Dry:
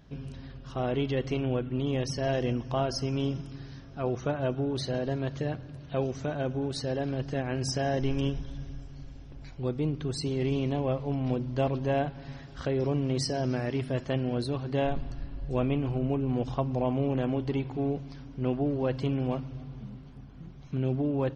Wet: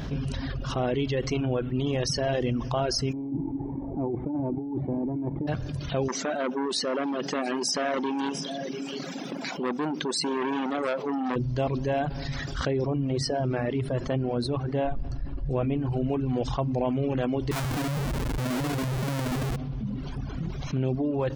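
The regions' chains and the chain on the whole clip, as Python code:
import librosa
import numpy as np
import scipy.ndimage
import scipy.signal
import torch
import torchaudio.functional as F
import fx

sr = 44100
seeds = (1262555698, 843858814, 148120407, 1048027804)

y = fx.envelope_flatten(x, sr, power=0.6, at=(3.11, 5.47), fade=0.02)
y = fx.formant_cascade(y, sr, vowel='u', at=(3.11, 5.47), fade=0.02)
y = fx.over_compress(y, sr, threshold_db=-42.0, ratio=-1.0, at=(3.11, 5.47), fade=0.02)
y = fx.chain(y, sr, fx.brickwall_highpass(low_hz=170.0),
    fx.echo_single(ms=694, db=-22.0),
    fx.transformer_sat(knee_hz=1300.0), at=(6.08, 11.36))
y = fx.chain(y, sr, fx.high_shelf(hz=2700.0, db=-12.0),
    fx.hum_notches(base_hz=50, count=8), at=(12.85, 15.92))
y = fx.chain(y, sr, fx.cheby2_bandstop(low_hz=1000.0, high_hz=2500.0, order=4, stop_db=80),
    fx.schmitt(flips_db=-51.0), at=(17.51, 19.56))
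y = fx.dereverb_blind(y, sr, rt60_s=1.3)
y = fx.env_flatten(y, sr, amount_pct=70)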